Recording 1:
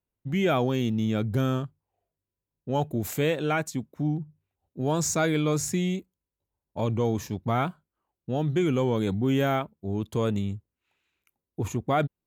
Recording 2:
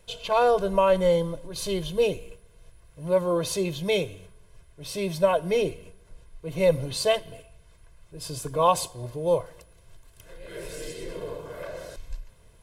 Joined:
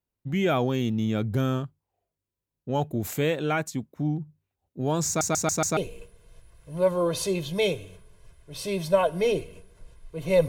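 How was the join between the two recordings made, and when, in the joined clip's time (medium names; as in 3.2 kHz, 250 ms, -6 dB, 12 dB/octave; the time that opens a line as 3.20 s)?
recording 1
5.07 s: stutter in place 0.14 s, 5 plays
5.77 s: go over to recording 2 from 2.07 s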